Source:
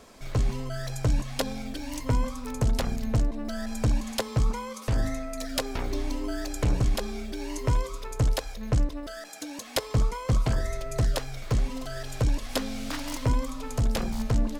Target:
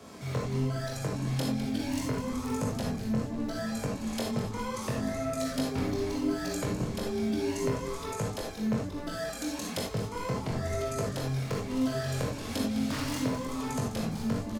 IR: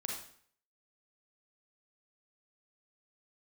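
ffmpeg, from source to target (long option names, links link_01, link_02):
-filter_complex "[0:a]highpass=frequency=86:width=0.5412,highpass=frequency=86:width=1.3066,lowshelf=frequency=260:gain=8.5,acrossover=split=130[link_01][link_02];[link_01]acompressor=threshold=-29dB:ratio=6[link_03];[link_03][link_02]amix=inputs=2:normalize=0,acrossover=split=540[link_04][link_05];[link_05]alimiter=limit=-21dB:level=0:latency=1:release=445[link_06];[link_04][link_06]amix=inputs=2:normalize=0,acompressor=threshold=-30dB:ratio=6,flanger=delay=19:depth=4.4:speed=1.1,asplit=7[link_07][link_08][link_09][link_10][link_11][link_12][link_13];[link_08]adelay=205,afreqshift=-120,volume=-11.5dB[link_14];[link_09]adelay=410,afreqshift=-240,volume=-17.2dB[link_15];[link_10]adelay=615,afreqshift=-360,volume=-22.9dB[link_16];[link_11]adelay=820,afreqshift=-480,volume=-28.5dB[link_17];[link_12]adelay=1025,afreqshift=-600,volume=-34.2dB[link_18];[link_13]adelay=1230,afreqshift=-720,volume=-39.9dB[link_19];[link_07][link_14][link_15][link_16][link_17][link_18][link_19]amix=inputs=7:normalize=0[link_20];[1:a]atrim=start_sample=2205,atrim=end_sample=4410[link_21];[link_20][link_21]afir=irnorm=-1:irlink=0,volume=5.5dB"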